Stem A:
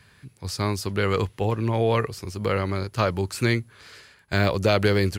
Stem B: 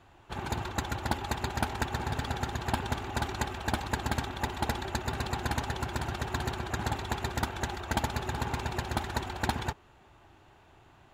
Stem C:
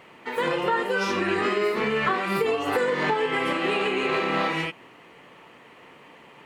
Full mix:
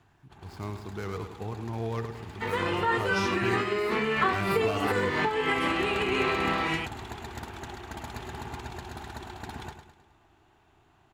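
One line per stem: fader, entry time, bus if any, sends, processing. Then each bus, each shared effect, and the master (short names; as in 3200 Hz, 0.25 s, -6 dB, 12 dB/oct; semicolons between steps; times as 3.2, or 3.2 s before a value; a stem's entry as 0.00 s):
-11.0 dB, 0.00 s, no send, echo send -9 dB, median filter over 15 samples
-6.0 dB, 0.00 s, no send, echo send -9 dB, tone controls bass -7 dB, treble +1 dB; limiter -23.5 dBFS, peak gain reduction 9.5 dB; low shelf 390 Hz +7.5 dB; auto duck -16 dB, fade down 0.50 s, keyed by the first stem
+0.5 dB, 2.15 s, no send, no echo send, noise-modulated level, depth 55%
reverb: off
echo: feedback echo 0.105 s, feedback 47%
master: bell 540 Hz -11 dB 0.2 oct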